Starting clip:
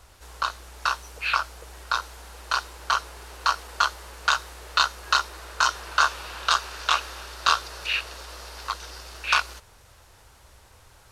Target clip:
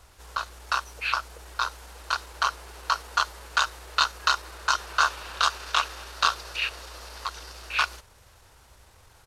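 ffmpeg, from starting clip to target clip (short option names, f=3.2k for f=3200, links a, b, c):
-af "atempo=1.2,volume=-1.5dB"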